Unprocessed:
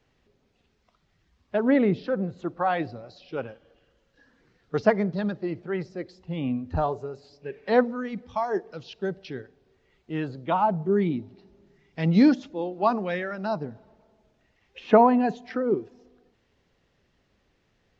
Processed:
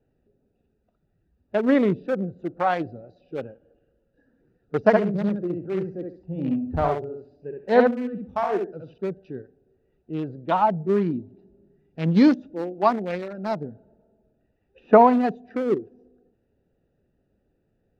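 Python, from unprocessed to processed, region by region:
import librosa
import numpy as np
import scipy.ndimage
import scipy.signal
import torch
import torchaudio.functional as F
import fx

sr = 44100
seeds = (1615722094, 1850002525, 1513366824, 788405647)

y = fx.chain(x, sr, fx.high_shelf(hz=3800.0, db=-6.5),
    fx.echo_feedback(ms=68, feedback_pct=23, wet_db=-3), at=(4.8, 8.98))
y = fx.wiener(y, sr, points=41)
y = fx.low_shelf(y, sr, hz=210.0, db=-5.5)
y = F.gain(torch.from_numpy(y), 4.0).numpy()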